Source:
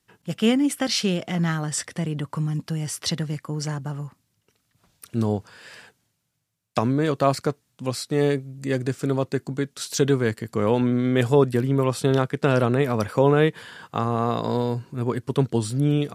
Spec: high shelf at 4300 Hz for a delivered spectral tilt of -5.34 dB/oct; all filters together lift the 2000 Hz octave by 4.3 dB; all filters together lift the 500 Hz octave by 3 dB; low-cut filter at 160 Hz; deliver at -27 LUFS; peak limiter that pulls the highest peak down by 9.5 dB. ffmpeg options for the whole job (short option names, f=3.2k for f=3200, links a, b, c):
-af "highpass=160,equalizer=f=500:t=o:g=3.5,equalizer=f=2k:t=o:g=7,highshelf=f=4.3k:g=-8.5,volume=-1.5dB,alimiter=limit=-14.5dB:level=0:latency=1"